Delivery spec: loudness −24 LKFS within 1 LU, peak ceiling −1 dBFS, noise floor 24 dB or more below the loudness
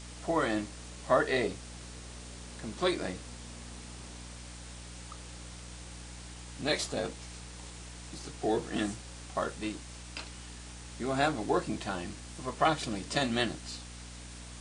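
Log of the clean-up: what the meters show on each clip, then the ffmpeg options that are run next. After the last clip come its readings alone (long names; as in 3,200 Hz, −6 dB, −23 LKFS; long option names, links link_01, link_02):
mains hum 60 Hz; hum harmonics up to 300 Hz; level of the hum −45 dBFS; background noise floor −46 dBFS; target noise floor −57 dBFS; integrated loudness −33.0 LKFS; sample peak −11.5 dBFS; target loudness −24.0 LKFS
→ -af "bandreject=frequency=60:width_type=h:width=6,bandreject=frequency=120:width_type=h:width=6,bandreject=frequency=180:width_type=h:width=6,bandreject=frequency=240:width_type=h:width=6,bandreject=frequency=300:width_type=h:width=6"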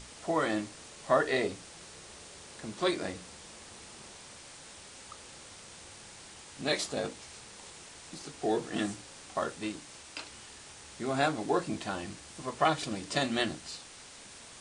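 mains hum none found; background noise floor −50 dBFS; target noise floor −57 dBFS
→ -af "afftdn=noise_reduction=7:noise_floor=-50"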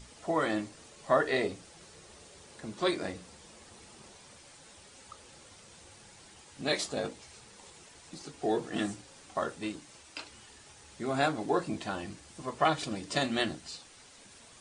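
background noise floor −55 dBFS; target noise floor −57 dBFS
→ -af "afftdn=noise_reduction=6:noise_floor=-55"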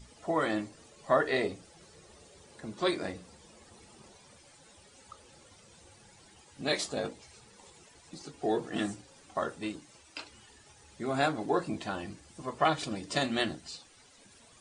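background noise floor −59 dBFS; integrated loudness −33.0 LKFS; sample peak −11.5 dBFS; target loudness −24.0 LKFS
→ -af "volume=9dB"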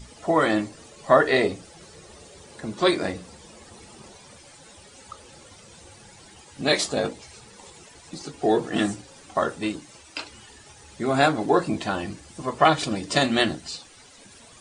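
integrated loudness −24.0 LKFS; sample peak −2.5 dBFS; background noise floor −50 dBFS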